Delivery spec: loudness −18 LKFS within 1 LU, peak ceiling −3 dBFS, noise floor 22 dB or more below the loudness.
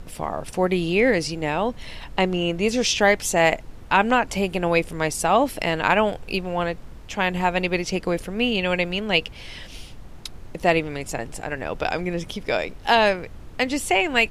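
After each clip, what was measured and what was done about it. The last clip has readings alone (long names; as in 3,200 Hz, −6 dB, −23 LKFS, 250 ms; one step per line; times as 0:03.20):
background noise floor −41 dBFS; target noise floor −45 dBFS; integrated loudness −22.5 LKFS; sample peak −4.5 dBFS; target loudness −18.0 LKFS
→ noise reduction from a noise print 6 dB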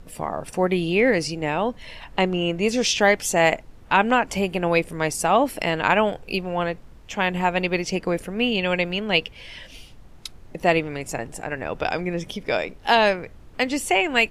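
background noise floor −46 dBFS; integrated loudness −22.5 LKFS; sample peak −4.5 dBFS; target loudness −18.0 LKFS
→ level +4.5 dB
brickwall limiter −3 dBFS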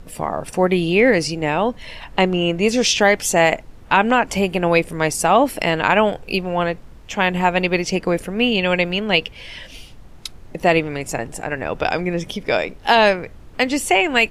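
integrated loudness −18.5 LKFS; sample peak −3.0 dBFS; background noise floor −41 dBFS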